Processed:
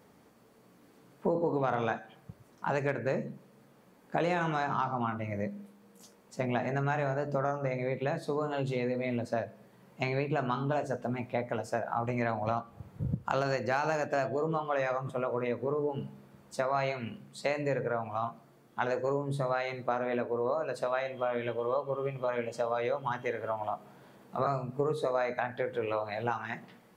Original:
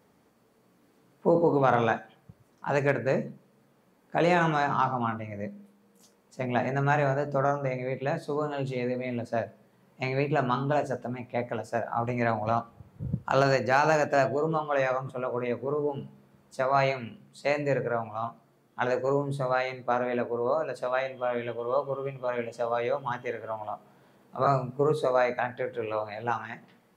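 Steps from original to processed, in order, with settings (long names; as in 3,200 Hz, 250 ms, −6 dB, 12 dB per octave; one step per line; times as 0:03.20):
downward compressor 3 to 1, threshold −33 dBFS, peak gain reduction 12 dB
level +3.5 dB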